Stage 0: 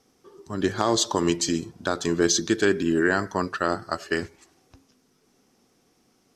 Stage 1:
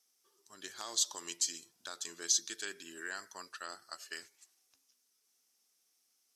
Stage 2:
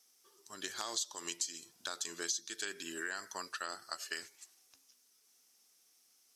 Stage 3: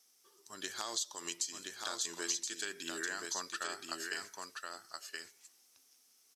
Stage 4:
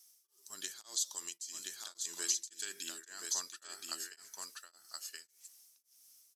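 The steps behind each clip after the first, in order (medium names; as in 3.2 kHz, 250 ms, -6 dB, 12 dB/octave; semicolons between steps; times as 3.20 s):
differentiator; trim -4 dB
compression 5:1, threshold -42 dBFS, peak gain reduction 15.5 dB; trim +6.5 dB
delay 1024 ms -4 dB
pre-emphasis filter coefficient 0.8; tremolo of two beating tones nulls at 1.8 Hz; trim +6.5 dB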